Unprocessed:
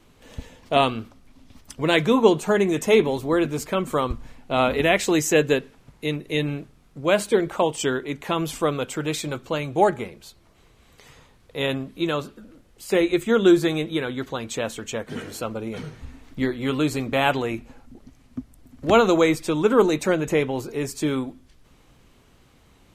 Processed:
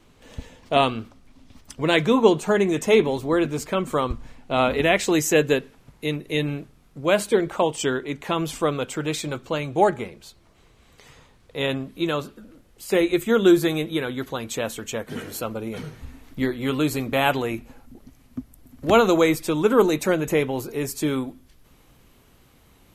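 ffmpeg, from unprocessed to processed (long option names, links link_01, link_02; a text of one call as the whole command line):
ffmpeg -i in.wav -af "asetnsamples=nb_out_samples=441:pad=0,asendcmd='5.12 equalizer g 3.5;7.34 equalizer g -2.5;11.84 equalizer g 4;12.93 equalizer g 10.5',equalizer=frequency=12000:width_type=o:width=0.41:gain=-3.5" out.wav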